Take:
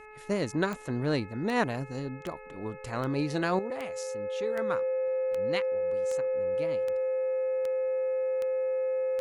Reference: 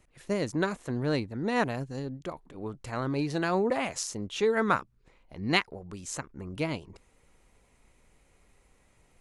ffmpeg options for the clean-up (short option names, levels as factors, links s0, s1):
-af "adeclick=t=4,bandreject=f=427.6:t=h:w=4,bandreject=f=855.2:t=h:w=4,bandreject=f=1282.8:t=h:w=4,bandreject=f=1710.4:t=h:w=4,bandreject=f=2138:t=h:w=4,bandreject=f=2565.6:t=h:w=4,bandreject=f=520:w=30,asetnsamples=n=441:p=0,asendcmd='3.59 volume volume 9.5dB',volume=1"